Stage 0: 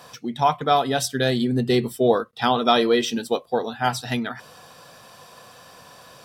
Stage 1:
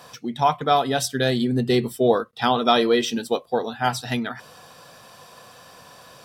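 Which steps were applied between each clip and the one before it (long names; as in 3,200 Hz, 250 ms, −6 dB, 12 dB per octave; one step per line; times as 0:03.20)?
no processing that can be heard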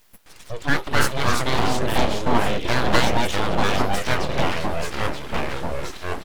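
multiband delay without the direct sound highs, lows 260 ms, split 5,000 Hz
delay with pitch and tempo change per echo 135 ms, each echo −3 semitones, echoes 3
full-wave rectification
level +1 dB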